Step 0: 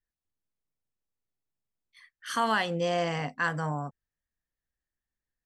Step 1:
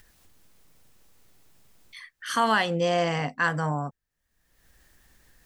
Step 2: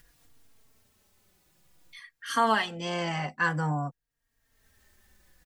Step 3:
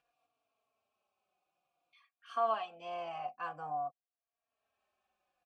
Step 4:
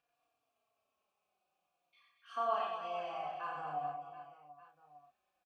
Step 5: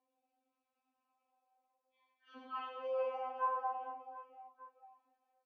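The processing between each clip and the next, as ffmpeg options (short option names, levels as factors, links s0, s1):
-af "acompressor=mode=upward:threshold=0.01:ratio=2.5,volume=1.58"
-filter_complex "[0:a]asplit=2[s0][s1];[s1]adelay=3.7,afreqshift=-0.52[s2];[s0][s2]amix=inputs=2:normalize=1"
-filter_complex "[0:a]asplit=3[s0][s1][s2];[s0]bandpass=f=730:t=q:w=8,volume=1[s3];[s1]bandpass=f=1090:t=q:w=8,volume=0.501[s4];[s2]bandpass=f=2440:t=q:w=8,volume=0.355[s5];[s3][s4][s5]amix=inputs=3:normalize=0"
-filter_complex "[0:a]asplit=2[s0][s1];[s1]adelay=34,volume=0.708[s2];[s0][s2]amix=inputs=2:normalize=0,asplit=2[s3][s4];[s4]aecho=0:1:90|225|427.5|731.2|1187:0.631|0.398|0.251|0.158|0.1[s5];[s3][s5]amix=inputs=2:normalize=0,volume=0.631"
-af "bandpass=f=380:t=q:w=0.59:csg=0,afftfilt=real='re*3.46*eq(mod(b,12),0)':imag='im*3.46*eq(mod(b,12),0)':win_size=2048:overlap=0.75,volume=2.37"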